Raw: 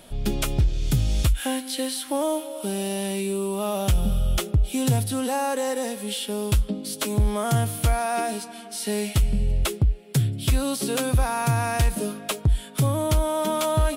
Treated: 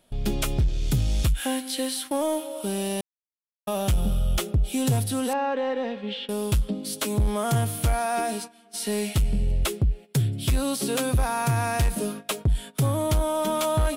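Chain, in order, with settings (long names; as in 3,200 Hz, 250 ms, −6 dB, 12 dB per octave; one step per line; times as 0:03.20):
0:03.01–0:03.67: silence
0:05.33–0:06.29: low-pass filter 3,400 Hz 24 dB per octave
noise gate −35 dBFS, range −15 dB
soft clipping −14.5 dBFS, distortion −20 dB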